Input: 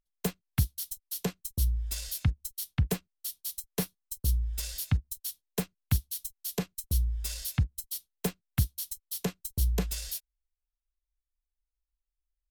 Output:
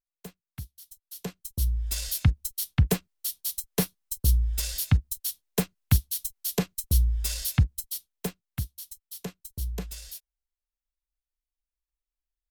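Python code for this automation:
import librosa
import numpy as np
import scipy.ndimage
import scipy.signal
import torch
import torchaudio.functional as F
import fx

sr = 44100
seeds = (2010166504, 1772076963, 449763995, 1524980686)

y = fx.gain(x, sr, db=fx.line((0.81, -12.5), (1.36, -2.0), (2.03, 5.5), (7.67, 5.5), (8.61, -5.0)))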